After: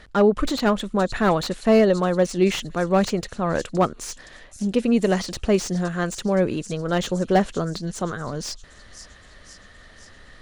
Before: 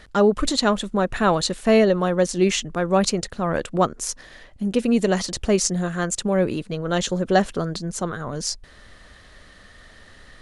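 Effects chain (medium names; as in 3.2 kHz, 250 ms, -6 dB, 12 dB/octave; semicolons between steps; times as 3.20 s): treble shelf 8.1 kHz -8 dB; on a send: feedback echo behind a high-pass 518 ms, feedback 61%, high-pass 5 kHz, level -12 dB; on the sum: slew-rate limiter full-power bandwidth 200 Hz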